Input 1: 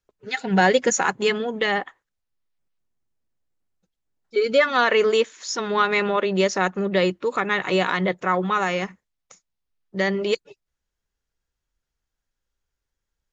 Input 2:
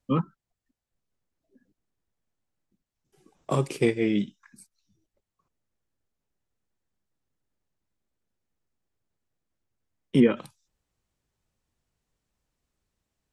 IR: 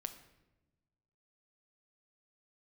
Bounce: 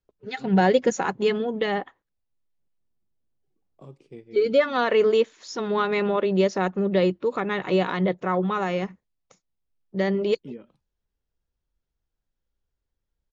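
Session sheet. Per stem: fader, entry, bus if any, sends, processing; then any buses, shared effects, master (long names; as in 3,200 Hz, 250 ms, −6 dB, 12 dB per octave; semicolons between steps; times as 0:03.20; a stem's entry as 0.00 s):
+1.5 dB, 0.00 s, no send, no processing
−19.0 dB, 0.30 s, no send, no processing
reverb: not used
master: low-pass filter 3,700 Hz 12 dB per octave; parametric band 1,800 Hz −9 dB 2.2 octaves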